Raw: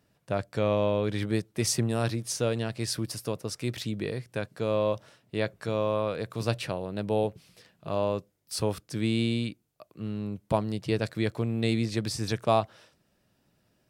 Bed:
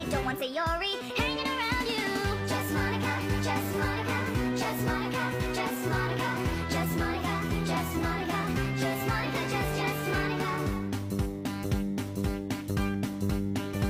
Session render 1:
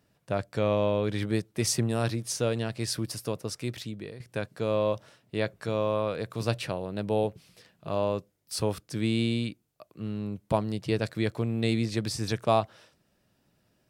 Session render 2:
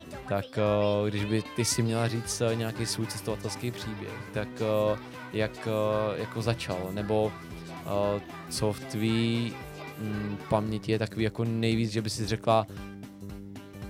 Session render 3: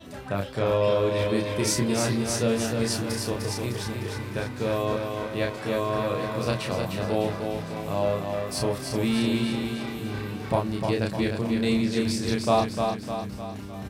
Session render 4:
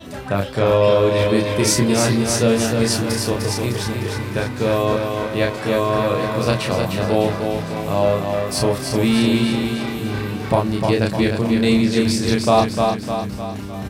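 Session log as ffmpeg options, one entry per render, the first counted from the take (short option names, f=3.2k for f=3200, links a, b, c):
-filter_complex "[0:a]asplit=2[a][b];[a]atrim=end=4.2,asetpts=PTS-STARTPTS,afade=t=out:st=3.49:d=0.71:silence=0.251189[c];[b]atrim=start=4.2,asetpts=PTS-STARTPTS,afade=t=in:d=0.004:c=hsin:silence=0.251189[d];[c][d]concat=n=2:v=0:a=1"
-filter_complex "[1:a]volume=-12dB[a];[0:a][a]amix=inputs=2:normalize=0"
-filter_complex "[0:a]asplit=2[a][b];[b]adelay=31,volume=-2.5dB[c];[a][c]amix=inputs=2:normalize=0,asplit=2[d][e];[e]aecho=0:1:303|606|909|1212|1515|1818|2121:0.562|0.292|0.152|0.0791|0.0411|0.0214|0.0111[f];[d][f]amix=inputs=2:normalize=0"
-af "volume=8dB,alimiter=limit=-2dB:level=0:latency=1"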